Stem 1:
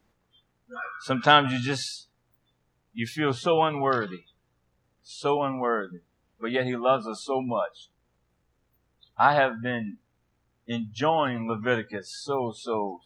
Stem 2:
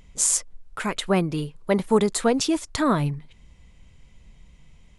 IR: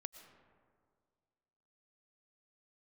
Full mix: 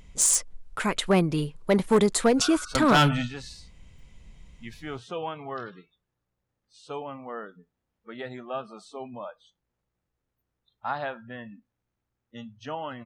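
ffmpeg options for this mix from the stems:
-filter_complex "[0:a]adelay=1650,volume=-1dB[a];[1:a]volume=0.5dB,asplit=2[b][c];[c]apad=whole_len=648390[d];[a][d]sidechaingate=range=-10dB:threshold=-39dB:ratio=16:detection=peak[e];[e][b]amix=inputs=2:normalize=0,volume=13.5dB,asoftclip=hard,volume=-13.5dB"

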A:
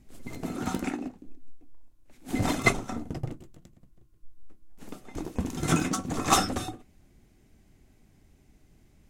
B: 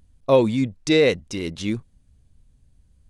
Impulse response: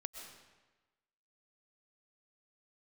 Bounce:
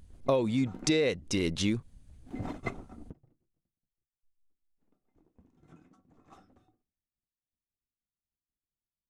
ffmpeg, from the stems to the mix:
-filter_complex "[0:a]agate=range=-33dB:threshold=-49dB:ratio=3:detection=peak,lowpass=f=1.1k:p=1,volume=-9.5dB[a];[1:a]volume=2dB,asplit=2[b][c];[c]apad=whole_len=401261[d];[a][d]sidechaingate=range=-22dB:threshold=-53dB:ratio=16:detection=peak[e];[e][b]amix=inputs=2:normalize=0,acompressor=threshold=-25dB:ratio=5"

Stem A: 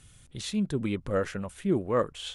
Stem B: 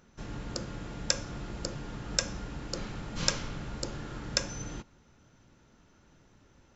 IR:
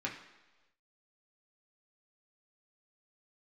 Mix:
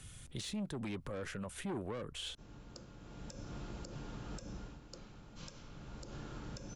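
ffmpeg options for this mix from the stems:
-filter_complex "[0:a]asoftclip=type=tanh:threshold=-26.5dB,volume=2.5dB[a];[1:a]equalizer=f=1.9k:t=o:w=0.41:g=-5.5,adelay=2200,volume=4dB,afade=t=in:st=2.98:d=0.47:silence=0.354813,afade=t=out:st=4.54:d=0.26:silence=0.316228,afade=t=in:st=5.65:d=0.56:silence=0.334965[b];[a][b]amix=inputs=2:normalize=0,acrossover=split=250|530[c][d][e];[c]acompressor=threshold=-41dB:ratio=4[f];[d]acompressor=threshold=-44dB:ratio=4[g];[e]acompressor=threshold=-42dB:ratio=4[h];[f][g][h]amix=inputs=3:normalize=0,alimiter=level_in=8dB:limit=-24dB:level=0:latency=1:release=98,volume=-8dB"

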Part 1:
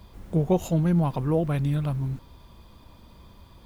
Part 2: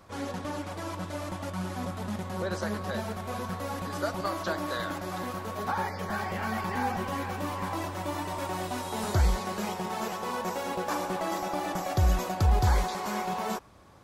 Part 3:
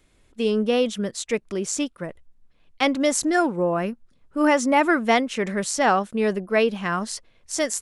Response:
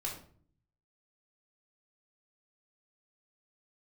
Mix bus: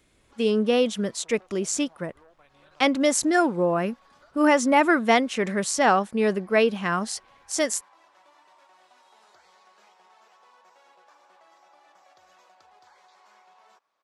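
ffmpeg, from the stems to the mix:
-filter_complex "[0:a]aeval=exprs='0.316*(cos(1*acos(clip(val(0)/0.316,-1,1)))-cos(1*PI/2))+0.0631*(cos(5*acos(clip(val(0)/0.316,-1,1)))-cos(5*PI/2))':c=same,adelay=900,volume=-15.5dB[a];[1:a]adelay=200,volume=-16.5dB[b];[2:a]highpass=f=66:p=1,volume=0dB[c];[a][b]amix=inputs=2:normalize=0,highpass=740,lowpass=6k,acompressor=threshold=-54dB:ratio=6,volume=0dB[d];[c][d]amix=inputs=2:normalize=0"

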